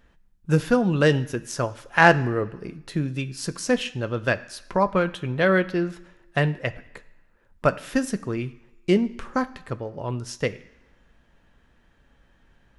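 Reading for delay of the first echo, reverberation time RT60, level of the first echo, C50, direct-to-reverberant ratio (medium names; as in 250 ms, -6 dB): no echo, 1.1 s, no echo, 17.5 dB, 10.0 dB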